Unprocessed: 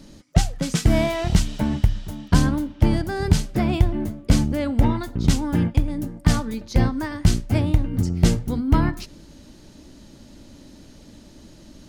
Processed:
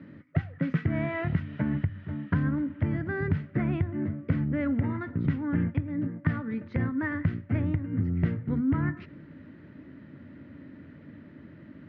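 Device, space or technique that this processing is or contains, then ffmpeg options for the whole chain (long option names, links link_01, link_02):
bass amplifier: -af "acompressor=threshold=-24dB:ratio=3,highpass=frequency=87:width=0.5412,highpass=frequency=87:width=1.3066,equalizer=frequency=91:width_type=q:width=4:gain=7,equalizer=frequency=150:width_type=q:width=4:gain=7,equalizer=frequency=270:width_type=q:width=4:gain=5,equalizer=frequency=800:width_type=q:width=4:gain=-8,equalizer=frequency=1400:width_type=q:width=4:gain=5,equalizer=frequency=1900:width_type=q:width=4:gain=9,lowpass=frequency=2300:width=0.5412,lowpass=frequency=2300:width=1.3066,volume=-3.5dB"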